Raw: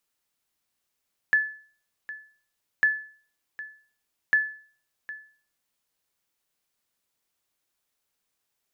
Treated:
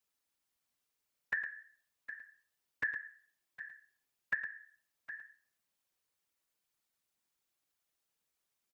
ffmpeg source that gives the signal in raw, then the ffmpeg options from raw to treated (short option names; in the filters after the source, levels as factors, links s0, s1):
-f lavfi -i "aevalsrc='0.211*(sin(2*PI*1730*mod(t,1.5))*exp(-6.91*mod(t,1.5)/0.45)+0.141*sin(2*PI*1730*max(mod(t,1.5)-0.76,0))*exp(-6.91*max(mod(t,1.5)-0.76,0)/0.45))':d=4.5:s=44100"
-filter_complex "[0:a]afftfilt=real='hypot(re,im)*cos(2*PI*random(0))':imag='hypot(re,im)*sin(2*PI*random(1))':win_size=512:overlap=0.75,acrossover=split=490[s0][s1];[s1]acompressor=threshold=0.0224:ratio=4[s2];[s0][s2]amix=inputs=2:normalize=0,asplit=2[s3][s4];[s4]aecho=0:1:110:0.282[s5];[s3][s5]amix=inputs=2:normalize=0"